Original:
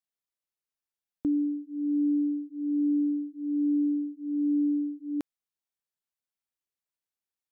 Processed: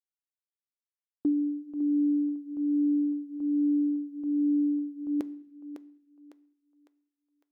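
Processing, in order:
noise gate with hold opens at −33 dBFS
dynamic equaliser 450 Hz, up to +6 dB, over −42 dBFS, Q 1.1
feedback echo with a high-pass in the loop 554 ms, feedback 48%, high-pass 440 Hz, level −8 dB
on a send at −12 dB: convolution reverb RT60 0.65 s, pre-delay 3 ms
on the sum: level −1 dB

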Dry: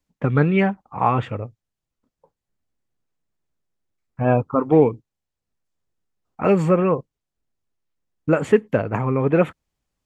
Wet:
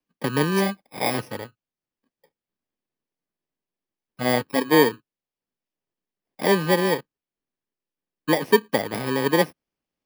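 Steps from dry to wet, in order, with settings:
samples in bit-reversed order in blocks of 32 samples
three-way crossover with the lows and the highs turned down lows −17 dB, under 190 Hz, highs −13 dB, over 4,600 Hz

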